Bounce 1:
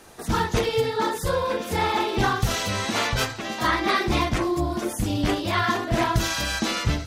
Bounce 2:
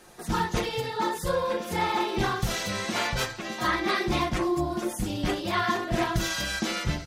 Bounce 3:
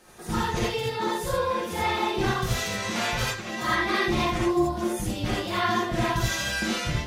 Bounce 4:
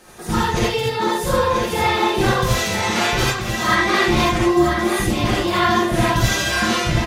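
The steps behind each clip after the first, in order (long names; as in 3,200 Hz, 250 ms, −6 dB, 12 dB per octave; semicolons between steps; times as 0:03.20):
comb filter 5.6 ms, depth 46%; level −4.5 dB
reverb whose tail is shaped and stops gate 100 ms rising, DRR −3.5 dB; level −3.5 dB
single-tap delay 986 ms −7 dB; level +7.5 dB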